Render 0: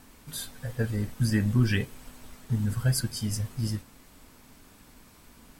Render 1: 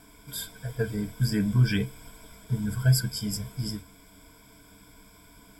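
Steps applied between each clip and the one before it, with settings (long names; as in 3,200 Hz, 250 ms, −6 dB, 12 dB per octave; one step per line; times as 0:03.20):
EQ curve with evenly spaced ripples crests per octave 1.7, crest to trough 15 dB
level −2 dB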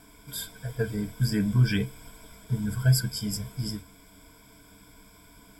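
no processing that can be heard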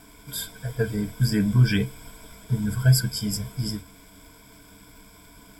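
surface crackle 250 per second −49 dBFS
level +3.5 dB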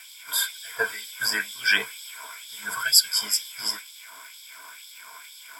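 sub-octave generator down 2 octaves, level −5 dB
auto-filter high-pass sine 2.1 Hz 980–3,700 Hz
level +7 dB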